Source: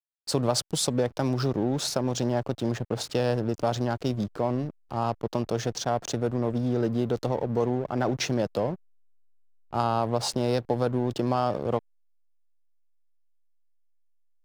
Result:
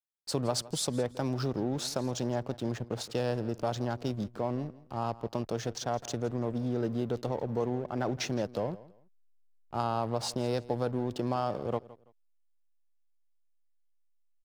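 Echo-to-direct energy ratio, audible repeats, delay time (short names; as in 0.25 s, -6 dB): -19.0 dB, 2, 0.166 s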